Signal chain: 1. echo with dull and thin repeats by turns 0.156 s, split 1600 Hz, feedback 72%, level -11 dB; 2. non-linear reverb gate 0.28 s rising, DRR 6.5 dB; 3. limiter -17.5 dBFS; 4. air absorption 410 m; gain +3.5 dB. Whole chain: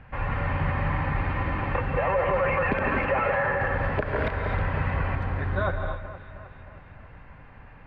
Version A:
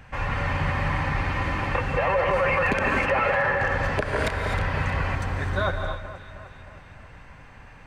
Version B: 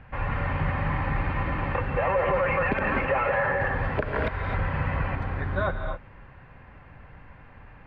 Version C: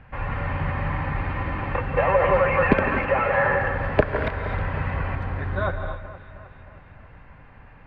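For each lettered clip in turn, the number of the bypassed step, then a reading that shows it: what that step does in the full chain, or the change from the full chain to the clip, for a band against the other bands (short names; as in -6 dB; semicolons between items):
4, 4 kHz band +7.5 dB; 1, momentary loudness spread change -4 LU; 3, crest factor change +8.5 dB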